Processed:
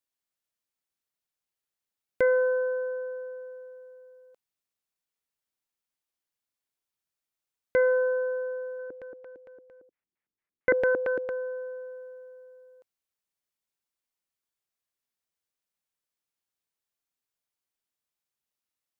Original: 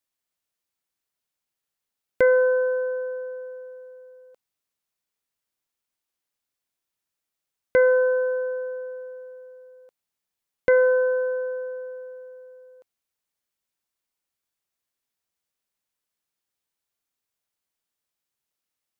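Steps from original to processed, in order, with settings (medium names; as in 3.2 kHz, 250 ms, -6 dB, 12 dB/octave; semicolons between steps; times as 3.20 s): 8.79–11.30 s: LFO low-pass square 4.4 Hz 320–2000 Hz; trim -5 dB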